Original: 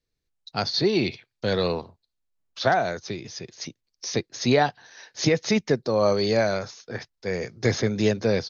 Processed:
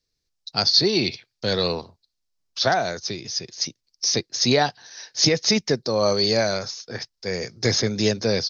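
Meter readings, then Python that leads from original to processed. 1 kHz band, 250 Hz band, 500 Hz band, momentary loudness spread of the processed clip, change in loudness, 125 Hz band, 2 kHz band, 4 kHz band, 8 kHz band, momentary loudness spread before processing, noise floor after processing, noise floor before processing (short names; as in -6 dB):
0.0 dB, 0.0 dB, 0.0 dB, 13 LU, +2.5 dB, 0.0 dB, +1.0 dB, +9.5 dB, n/a, 14 LU, -78 dBFS, -81 dBFS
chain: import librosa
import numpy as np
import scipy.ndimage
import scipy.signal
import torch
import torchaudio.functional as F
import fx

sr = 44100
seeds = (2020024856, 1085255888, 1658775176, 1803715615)

y = fx.peak_eq(x, sr, hz=5200.0, db=12.5, octaves=0.86)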